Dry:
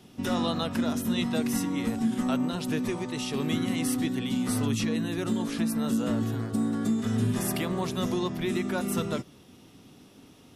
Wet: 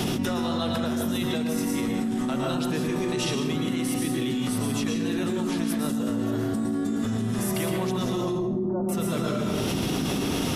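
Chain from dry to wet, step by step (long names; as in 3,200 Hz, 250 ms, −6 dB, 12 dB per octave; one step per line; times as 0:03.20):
0:08.21–0:08.89: Butterworth low-pass 1,000 Hz 36 dB per octave
convolution reverb RT60 0.75 s, pre-delay 105 ms, DRR 1 dB
envelope flattener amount 100%
level −5.5 dB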